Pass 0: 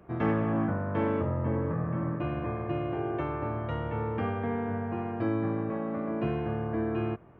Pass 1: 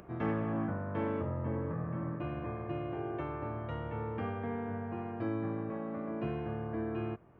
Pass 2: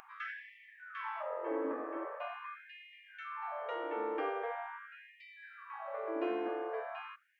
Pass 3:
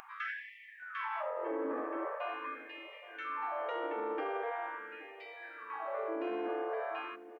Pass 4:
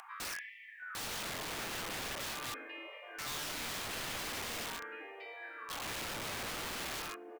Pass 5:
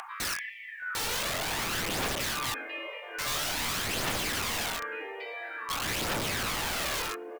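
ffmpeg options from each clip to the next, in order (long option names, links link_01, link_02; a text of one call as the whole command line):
ffmpeg -i in.wav -af "acompressor=mode=upward:threshold=-40dB:ratio=2.5,volume=-6dB" out.wav
ffmpeg -i in.wav -af "afftfilt=real='re*gte(b*sr/1024,250*pow(1800/250,0.5+0.5*sin(2*PI*0.43*pts/sr)))':imag='im*gte(b*sr/1024,250*pow(1800/250,0.5+0.5*sin(2*PI*0.43*pts/sr)))':win_size=1024:overlap=0.75,volume=4dB" out.wav
ffmpeg -i in.wav -filter_complex "[0:a]alimiter=level_in=8.5dB:limit=-24dB:level=0:latency=1:release=48,volume=-8.5dB,asplit=2[link_01][link_02];[link_02]adelay=823,lowpass=frequency=870:poles=1,volume=-14dB,asplit=2[link_03][link_04];[link_04]adelay=823,lowpass=frequency=870:poles=1,volume=0.54,asplit=2[link_05][link_06];[link_06]adelay=823,lowpass=frequency=870:poles=1,volume=0.54,asplit=2[link_07][link_08];[link_08]adelay=823,lowpass=frequency=870:poles=1,volume=0.54,asplit=2[link_09][link_10];[link_10]adelay=823,lowpass=frequency=870:poles=1,volume=0.54[link_11];[link_01][link_03][link_05][link_07][link_09][link_11]amix=inputs=6:normalize=0,volume=4dB" out.wav
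ffmpeg -i in.wav -af "aeval=exprs='(mod(66.8*val(0)+1,2)-1)/66.8':channel_layout=same,volume=1dB" out.wav
ffmpeg -i in.wav -af "aphaser=in_gain=1:out_gain=1:delay=2.3:decay=0.4:speed=0.49:type=triangular,volume=8dB" out.wav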